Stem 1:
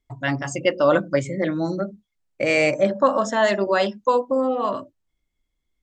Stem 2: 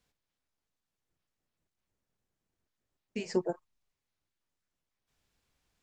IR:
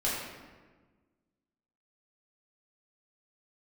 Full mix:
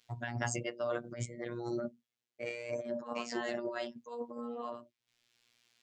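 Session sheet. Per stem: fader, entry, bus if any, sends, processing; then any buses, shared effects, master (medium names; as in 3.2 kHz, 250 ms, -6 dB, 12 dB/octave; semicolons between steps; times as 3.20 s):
-7.5 dB, 0.00 s, no send, trance gate "xxx..x.xx..." 72 bpm -12 dB
-1.5 dB, 0.00 s, no send, frequency weighting D; auto duck -11 dB, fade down 0.30 s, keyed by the first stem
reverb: none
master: compressor with a negative ratio -35 dBFS, ratio -1; high-pass 93 Hz; robot voice 119 Hz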